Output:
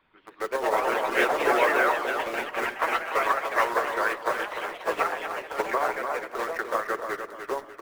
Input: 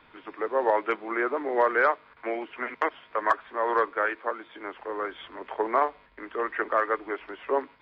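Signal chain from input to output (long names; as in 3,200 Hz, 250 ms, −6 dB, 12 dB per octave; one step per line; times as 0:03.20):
in parallel at −7 dB: bit reduction 5 bits
on the sum: rectangular room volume 2,100 cubic metres, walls furnished, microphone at 1.1 metres
brickwall limiter −13 dBFS, peak gain reduction 6.5 dB
on a send: repeating echo 297 ms, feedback 49%, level −4 dB
on the sum: delay with pitch and tempo change per echo 174 ms, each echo +3 semitones, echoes 3
harmonic and percussive parts rebalanced percussive +9 dB
expander for the loud parts 1.5 to 1, over −29 dBFS
level −7.5 dB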